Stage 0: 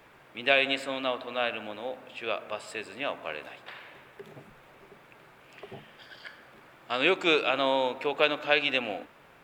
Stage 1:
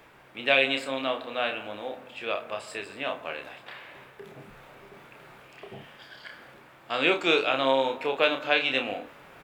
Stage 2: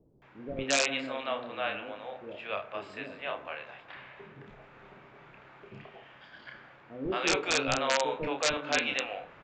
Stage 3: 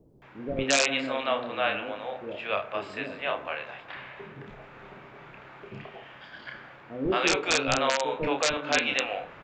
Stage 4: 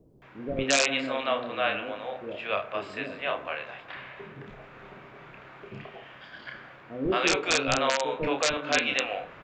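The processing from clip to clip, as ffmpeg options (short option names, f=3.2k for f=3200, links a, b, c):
-af "aecho=1:1:30|58:0.531|0.168,areverse,acompressor=mode=upward:threshold=-43dB:ratio=2.5,areverse"
-filter_complex "[0:a]bass=f=250:g=1,treble=f=4k:g=-13,aresample=16000,aeval=exprs='(mod(4.47*val(0)+1,2)-1)/4.47':c=same,aresample=44100,acrossover=split=450[a][b];[b]adelay=220[c];[a][c]amix=inputs=2:normalize=0,volume=-2.5dB"
-af "alimiter=limit=-16dB:level=0:latency=1:release=365,volume=6dB"
-af "bandreject=f=860:w=19"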